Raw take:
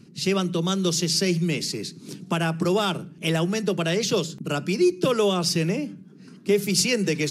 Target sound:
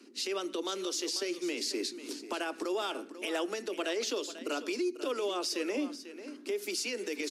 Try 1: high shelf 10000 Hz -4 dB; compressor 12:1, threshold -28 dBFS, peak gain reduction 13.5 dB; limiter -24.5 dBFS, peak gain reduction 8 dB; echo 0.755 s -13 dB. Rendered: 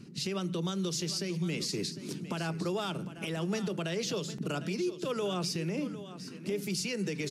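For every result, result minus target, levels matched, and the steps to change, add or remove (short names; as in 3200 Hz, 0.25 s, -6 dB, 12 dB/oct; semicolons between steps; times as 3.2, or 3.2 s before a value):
echo 0.262 s late; 250 Hz band +2.5 dB
change: echo 0.493 s -13 dB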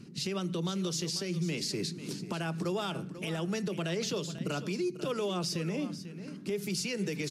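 250 Hz band +2.5 dB
add first: steep high-pass 250 Hz 72 dB/oct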